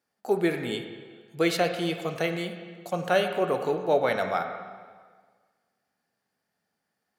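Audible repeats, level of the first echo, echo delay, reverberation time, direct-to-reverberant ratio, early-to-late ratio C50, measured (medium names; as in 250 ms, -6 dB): no echo, no echo, no echo, 1.6 s, 5.0 dB, 7.0 dB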